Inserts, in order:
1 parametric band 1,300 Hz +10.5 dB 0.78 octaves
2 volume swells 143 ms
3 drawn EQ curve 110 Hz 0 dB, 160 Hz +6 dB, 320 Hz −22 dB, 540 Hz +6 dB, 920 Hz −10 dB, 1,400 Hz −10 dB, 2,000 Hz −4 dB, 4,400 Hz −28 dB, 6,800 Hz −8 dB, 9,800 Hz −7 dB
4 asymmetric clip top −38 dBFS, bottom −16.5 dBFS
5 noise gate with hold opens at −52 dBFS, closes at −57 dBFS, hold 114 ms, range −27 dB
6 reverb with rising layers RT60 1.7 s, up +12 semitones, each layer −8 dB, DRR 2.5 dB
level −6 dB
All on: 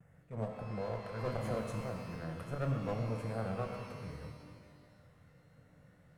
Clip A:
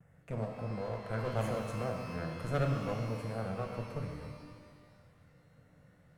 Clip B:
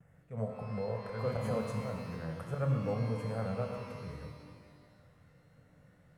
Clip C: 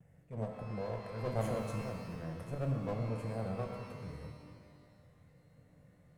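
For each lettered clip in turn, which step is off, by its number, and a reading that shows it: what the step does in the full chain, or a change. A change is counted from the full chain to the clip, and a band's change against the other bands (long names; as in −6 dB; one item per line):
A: 2, change in integrated loudness +2.5 LU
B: 4, distortion level −8 dB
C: 1, 2 kHz band −2.5 dB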